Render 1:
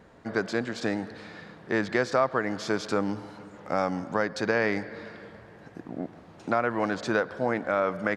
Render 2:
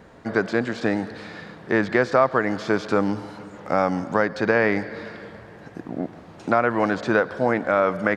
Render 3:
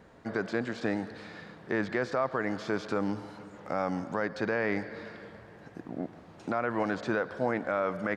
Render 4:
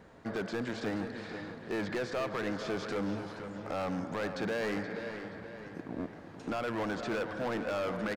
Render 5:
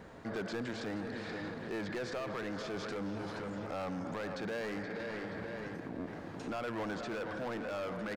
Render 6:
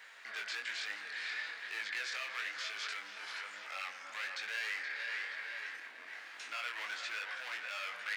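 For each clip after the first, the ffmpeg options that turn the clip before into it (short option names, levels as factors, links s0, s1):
-filter_complex "[0:a]acrossover=split=3200[s0][s1];[s1]acompressor=threshold=0.00355:ratio=4:attack=1:release=60[s2];[s0][s2]amix=inputs=2:normalize=0,volume=2"
-af "alimiter=limit=0.316:level=0:latency=1:release=34,volume=0.422"
-filter_complex "[0:a]asoftclip=type=hard:threshold=0.0316,asplit=2[s0][s1];[s1]adelay=476,lowpass=f=4800:p=1,volume=0.355,asplit=2[s2][s3];[s3]adelay=476,lowpass=f=4800:p=1,volume=0.5,asplit=2[s4][s5];[s5]adelay=476,lowpass=f=4800:p=1,volume=0.5,asplit=2[s6][s7];[s7]adelay=476,lowpass=f=4800:p=1,volume=0.5,asplit=2[s8][s9];[s9]adelay=476,lowpass=f=4800:p=1,volume=0.5,asplit=2[s10][s11];[s11]adelay=476,lowpass=f=4800:p=1,volume=0.5[s12];[s0][s2][s4][s6][s8][s10][s12]amix=inputs=7:normalize=0"
-af "alimiter=level_in=4.47:limit=0.0631:level=0:latency=1:release=24,volume=0.224,volume=1.58"
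-af "flanger=delay=20:depth=4.7:speed=1.1,highpass=f=2100:t=q:w=1.7,volume=2.51"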